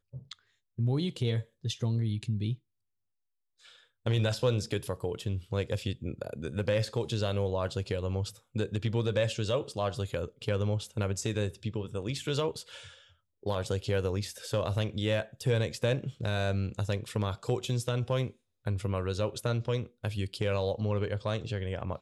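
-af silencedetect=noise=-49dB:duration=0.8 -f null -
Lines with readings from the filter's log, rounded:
silence_start: 2.56
silence_end: 3.64 | silence_duration: 1.09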